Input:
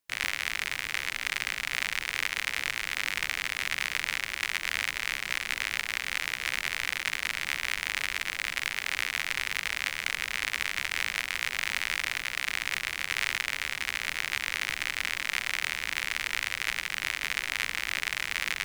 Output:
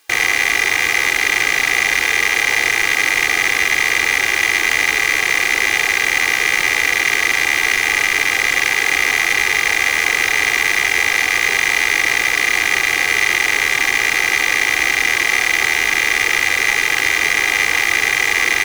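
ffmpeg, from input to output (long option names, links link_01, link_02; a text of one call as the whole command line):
ffmpeg -i in.wav -filter_complex "[0:a]aecho=1:1:2.5:0.71,asplit=2[link_01][link_02];[link_02]highpass=frequency=720:poles=1,volume=31dB,asoftclip=type=tanh:threshold=-8dB[link_03];[link_01][link_03]amix=inputs=2:normalize=0,lowpass=frequency=5000:poles=1,volume=-6dB,volume=5dB" out.wav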